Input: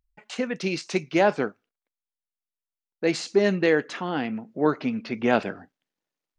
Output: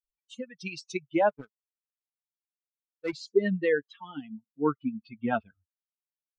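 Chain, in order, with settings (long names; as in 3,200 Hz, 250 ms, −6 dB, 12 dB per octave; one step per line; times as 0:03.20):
spectral dynamics exaggerated over time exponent 3
treble cut that deepens with the level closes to 2,300 Hz, closed at −26 dBFS
0:01.29–0:03.13: power curve on the samples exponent 1.4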